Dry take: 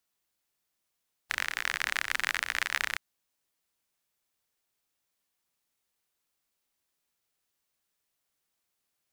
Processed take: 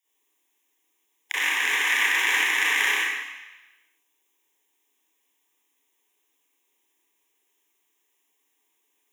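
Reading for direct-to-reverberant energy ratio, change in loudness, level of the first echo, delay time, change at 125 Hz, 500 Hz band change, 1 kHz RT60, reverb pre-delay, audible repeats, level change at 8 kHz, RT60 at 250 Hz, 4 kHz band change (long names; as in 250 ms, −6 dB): −12.0 dB, +9.5 dB, no echo audible, no echo audible, can't be measured, +8.5 dB, 1.1 s, 30 ms, no echo audible, +9.0 dB, 1.0 s, +9.0 dB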